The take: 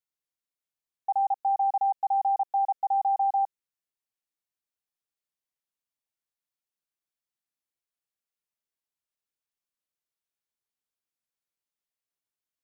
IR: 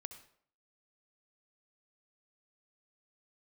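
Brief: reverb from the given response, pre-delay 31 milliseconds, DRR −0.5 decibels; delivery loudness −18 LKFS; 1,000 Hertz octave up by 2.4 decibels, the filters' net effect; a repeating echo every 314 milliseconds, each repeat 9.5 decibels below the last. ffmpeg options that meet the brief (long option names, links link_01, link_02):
-filter_complex "[0:a]equalizer=frequency=1000:width_type=o:gain=3.5,aecho=1:1:314|628|942|1256:0.335|0.111|0.0365|0.012,asplit=2[link_01][link_02];[1:a]atrim=start_sample=2205,adelay=31[link_03];[link_02][link_03]afir=irnorm=-1:irlink=0,volume=4.5dB[link_04];[link_01][link_04]amix=inputs=2:normalize=0,volume=6.5dB"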